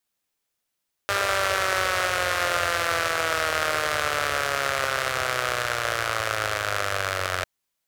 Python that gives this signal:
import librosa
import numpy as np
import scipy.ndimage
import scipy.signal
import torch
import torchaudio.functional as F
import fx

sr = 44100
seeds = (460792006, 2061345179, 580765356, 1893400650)

y = fx.engine_four_rev(sr, seeds[0], length_s=6.35, rpm=6000, resonances_hz=(92.0, 600.0, 1300.0), end_rpm=2700)